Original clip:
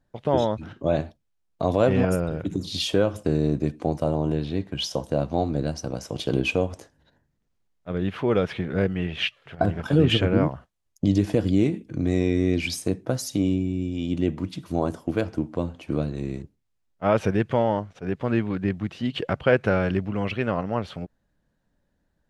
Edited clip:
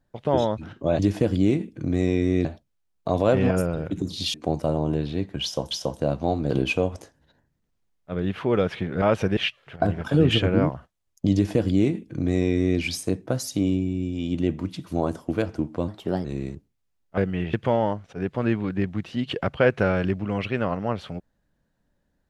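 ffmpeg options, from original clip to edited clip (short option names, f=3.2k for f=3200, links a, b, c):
-filter_complex "[0:a]asplit=12[a][b][c][d][e][f][g][h][i][j][k][l];[a]atrim=end=0.992[m];[b]atrim=start=11.118:end=12.582[n];[c]atrim=start=0.988:end=2.882[o];[d]atrim=start=3.718:end=5.092[p];[e]atrim=start=4.808:end=5.602[q];[f]atrim=start=6.278:end=8.802[r];[g]atrim=start=17.048:end=17.402[s];[h]atrim=start=9.158:end=15.674[t];[i]atrim=start=15.67:end=16.12,asetpts=PTS-STARTPTS,asetrate=54243,aresample=44100,atrim=end_sample=16134,asetpts=PTS-STARTPTS[u];[j]atrim=start=16.116:end=17.052[v];[k]atrim=start=8.798:end=9.162[w];[l]atrim=start=17.398[x];[m][n]acrossfade=d=0.004:c1=hsin:c2=hsin[y];[y][o]acrossfade=d=0.004:c1=hsin:c2=hsin[z];[z][p]acrossfade=d=0.004:c1=hsin:c2=hsin[aa];[aa][q]acrossfade=d=0.004:c1=hsin:c2=hsin[ab];[ab][r]acrossfade=d=0.004:c1=hsin:c2=hsin[ac];[ac][s]acrossfade=d=0.004:c1=hsin:c2=hsin[ad];[ad][t]acrossfade=d=0.004:c1=hsin:c2=hsin[ae];[ae][u]acrossfade=d=0.004:c1=hsin:c2=hsin[af];[af][v]acrossfade=d=0.004:c1=hsin:c2=hsin[ag];[ag][w]acrossfade=d=0.004:c1=hsin:c2=hsin[ah];[ah][x]acrossfade=d=0.004:c1=hsin:c2=hsin"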